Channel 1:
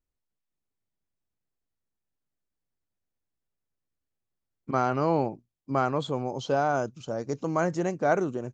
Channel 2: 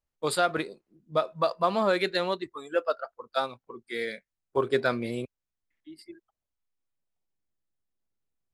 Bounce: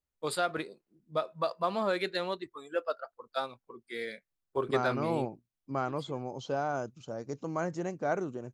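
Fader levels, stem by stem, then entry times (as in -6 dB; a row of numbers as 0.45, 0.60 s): -7.0, -5.5 dB; 0.00, 0.00 s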